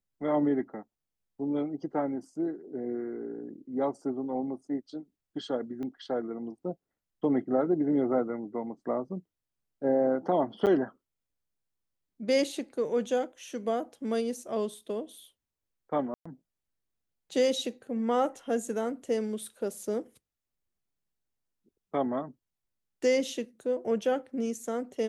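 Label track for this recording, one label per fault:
5.830000	5.830000	click −28 dBFS
10.660000	10.670000	drop-out 8.3 ms
16.140000	16.250000	drop-out 115 ms

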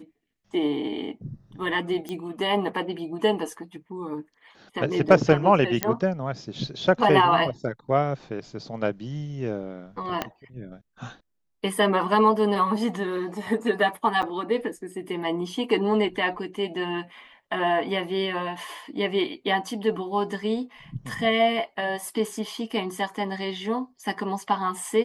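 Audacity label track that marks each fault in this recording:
2.090000	2.090000	click −20 dBFS
5.830000	5.830000	click −5 dBFS
10.220000	10.220000	click −11 dBFS
14.220000	14.230000	drop-out 7 ms

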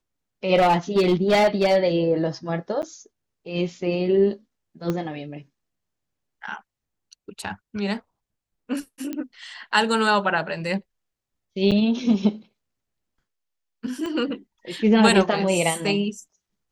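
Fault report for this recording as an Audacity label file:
0.550000	1.770000	clipping −13.5 dBFS
2.820000	2.830000	drop-out 9.1 ms
4.900000	4.900000	click −13 dBFS
9.130000	9.130000	click −17 dBFS
11.710000	11.720000	drop-out 7.1 ms
14.060000	14.060000	click −19 dBFS

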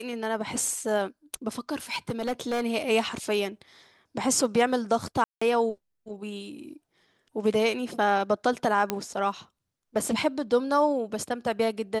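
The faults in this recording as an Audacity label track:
1.910000	2.640000	clipping −24.5 dBFS
5.240000	5.420000	drop-out 175 ms
8.900000	8.900000	click −10 dBFS

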